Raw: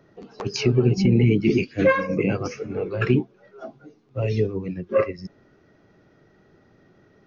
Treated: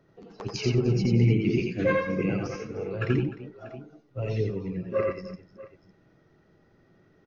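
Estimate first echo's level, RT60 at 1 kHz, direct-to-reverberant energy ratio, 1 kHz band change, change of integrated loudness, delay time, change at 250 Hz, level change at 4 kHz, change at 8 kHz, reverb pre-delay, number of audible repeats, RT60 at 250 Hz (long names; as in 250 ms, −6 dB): −3.5 dB, no reverb audible, no reverb audible, −6.0 dB, −4.5 dB, 85 ms, −5.0 dB, −5.0 dB, can't be measured, no reverb audible, 4, no reverb audible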